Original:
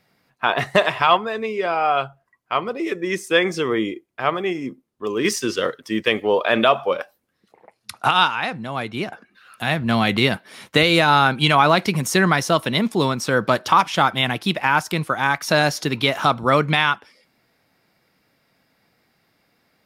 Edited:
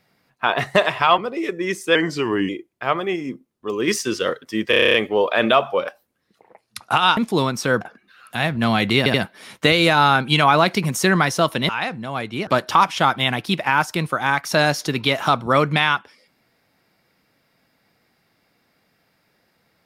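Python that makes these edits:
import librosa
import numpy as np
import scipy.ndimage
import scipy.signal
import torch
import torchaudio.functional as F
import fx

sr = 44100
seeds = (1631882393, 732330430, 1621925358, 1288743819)

y = fx.edit(x, sr, fx.cut(start_s=1.18, length_s=1.43),
    fx.speed_span(start_s=3.38, length_s=0.48, speed=0.89),
    fx.stutter(start_s=6.07, slice_s=0.03, count=9),
    fx.swap(start_s=8.3, length_s=0.78, other_s=12.8, other_length_s=0.64),
    fx.stutter(start_s=10.25, slice_s=0.08, count=3), tone=tone)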